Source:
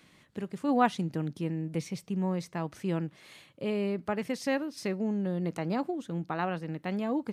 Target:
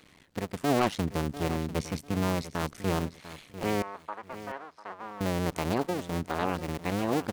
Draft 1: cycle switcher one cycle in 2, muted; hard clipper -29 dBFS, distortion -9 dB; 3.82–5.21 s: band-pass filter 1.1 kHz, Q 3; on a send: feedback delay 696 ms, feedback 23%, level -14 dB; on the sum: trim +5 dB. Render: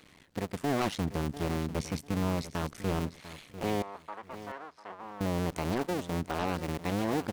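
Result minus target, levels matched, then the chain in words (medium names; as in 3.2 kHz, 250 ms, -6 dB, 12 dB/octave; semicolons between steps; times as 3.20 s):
hard clipper: distortion +7 dB
cycle switcher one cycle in 2, muted; hard clipper -22.5 dBFS, distortion -15 dB; 3.82–5.21 s: band-pass filter 1.1 kHz, Q 3; on a send: feedback delay 696 ms, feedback 23%, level -14 dB; on the sum: trim +5 dB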